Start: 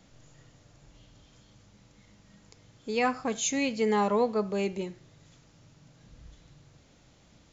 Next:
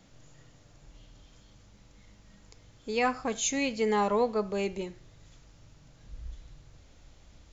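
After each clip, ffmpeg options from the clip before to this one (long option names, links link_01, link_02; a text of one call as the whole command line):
ffmpeg -i in.wav -af "asubboost=boost=5.5:cutoff=66" out.wav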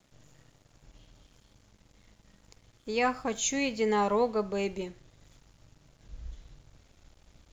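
ffmpeg -i in.wav -af "aeval=exprs='sgn(val(0))*max(abs(val(0))-0.001,0)':channel_layout=same" out.wav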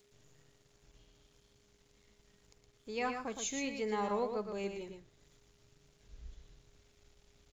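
ffmpeg -i in.wav -filter_complex "[0:a]acrossover=split=1700[link_01][link_02];[link_02]acompressor=mode=upward:threshold=-57dB:ratio=2.5[link_03];[link_01][link_03]amix=inputs=2:normalize=0,aeval=exprs='val(0)+0.00112*sin(2*PI*410*n/s)':channel_layout=same,aecho=1:1:116:0.473,volume=-9dB" out.wav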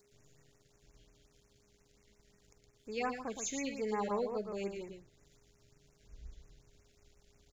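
ffmpeg -i in.wav -af "afftfilt=real='re*(1-between(b*sr/1024,920*pow(4000/920,0.5+0.5*sin(2*PI*5.6*pts/sr))/1.41,920*pow(4000/920,0.5+0.5*sin(2*PI*5.6*pts/sr))*1.41))':imag='im*(1-between(b*sr/1024,920*pow(4000/920,0.5+0.5*sin(2*PI*5.6*pts/sr))/1.41,920*pow(4000/920,0.5+0.5*sin(2*PI*5.6*pts/sr))*1.41))':win_size=1024:overlap=0.75" out.wav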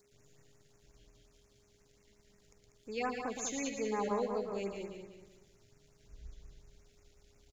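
ffmpeg -i in.wav -af "aecho=1:1:193|386|579|772:0.447|0.165|0.0612|0.0226" out.wav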